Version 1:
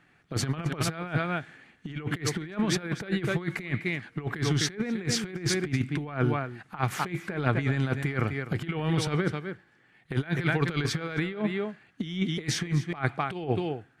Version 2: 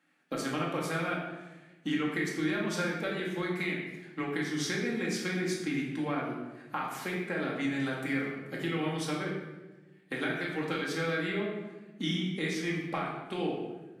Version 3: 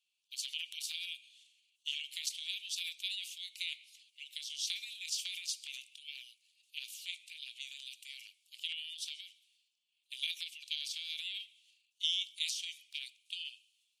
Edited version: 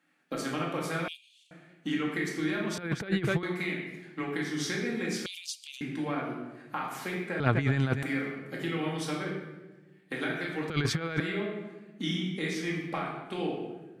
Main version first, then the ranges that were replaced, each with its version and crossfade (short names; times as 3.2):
2
1.08–1.51 from 3
2.78–3.43 from 1
5.26–5.81 from 3
7.4–8.03 from 1
10.7–11.2 from 1